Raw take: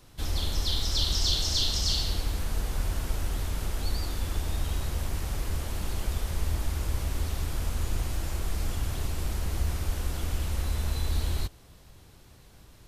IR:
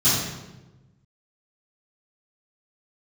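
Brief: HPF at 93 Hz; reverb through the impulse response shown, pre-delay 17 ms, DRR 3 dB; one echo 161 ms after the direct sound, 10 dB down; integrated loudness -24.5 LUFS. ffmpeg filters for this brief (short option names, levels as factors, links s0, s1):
-filter_complex "[0:a]highpass=93,aecho=1:1:161:0.316,asplit=2[s0][s1];[1:a]atrim=start_sample=2205,adelay=17[s2];[s1][s2]afir=irnorm=-1:irlink=0,volume=0.106[s3];[s0][s3]amix=inputs=2:normalize=0,volume=1.88"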